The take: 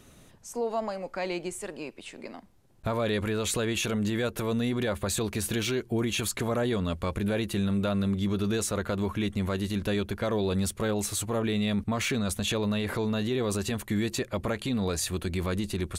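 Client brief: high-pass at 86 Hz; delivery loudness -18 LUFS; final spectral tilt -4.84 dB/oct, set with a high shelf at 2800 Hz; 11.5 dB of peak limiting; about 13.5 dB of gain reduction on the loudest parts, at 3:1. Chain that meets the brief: HPF 86 Hz; high shelf 2800 Hz -5.5 dB; compressor 3:1, threshold -44 dBFS; gain +29 dB; limiter -9 dBFS

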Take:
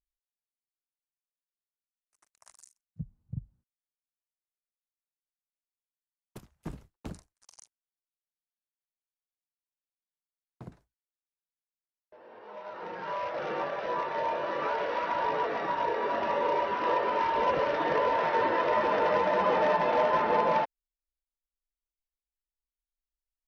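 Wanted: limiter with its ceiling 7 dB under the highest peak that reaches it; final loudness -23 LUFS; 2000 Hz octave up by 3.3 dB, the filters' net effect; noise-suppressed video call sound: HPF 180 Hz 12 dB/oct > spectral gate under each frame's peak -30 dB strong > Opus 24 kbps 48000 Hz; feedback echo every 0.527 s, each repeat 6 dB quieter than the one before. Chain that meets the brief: bell 2000 Hz +4 dB; limiter -21.5 dBFS; HPF 180 Hz 12 dB/oct; feedback echo 0.527 s, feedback 50%, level -6 dB; spectral gate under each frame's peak -30 dB strong; gain +6.5 dB; Opus 24 kbps 48000 Hz

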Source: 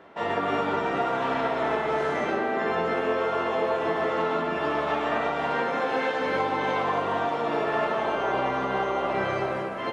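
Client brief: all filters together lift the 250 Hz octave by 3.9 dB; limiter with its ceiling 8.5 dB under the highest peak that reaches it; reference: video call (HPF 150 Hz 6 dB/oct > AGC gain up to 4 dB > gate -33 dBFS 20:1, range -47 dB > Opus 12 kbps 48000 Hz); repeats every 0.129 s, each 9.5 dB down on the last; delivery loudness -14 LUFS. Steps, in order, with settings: bell 250 Hz +6.5 dB; limiter -20 dBFS; HPF 150 Hz 6 dB/oct; feedback echo 0.129 s, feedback 33%, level -9.5 dB; AGC gain up to 4 dB; gate -33 dBFS 20:1, range -47 dB; gain +15.5 dB; Opus 12 kbps 48000 Hz

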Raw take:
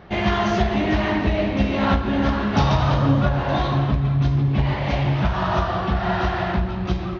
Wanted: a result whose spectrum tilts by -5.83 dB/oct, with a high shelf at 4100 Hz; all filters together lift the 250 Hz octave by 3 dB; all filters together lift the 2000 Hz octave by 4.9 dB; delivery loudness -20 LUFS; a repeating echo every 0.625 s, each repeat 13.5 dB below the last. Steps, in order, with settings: bell 250 Hz +4 dB; bell 2000 Hz +7.5 dB; high shelf 4100 Hz -7 dB; feedback echo 0.625 s, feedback 21%, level -13.5 dB; gain -1 dB

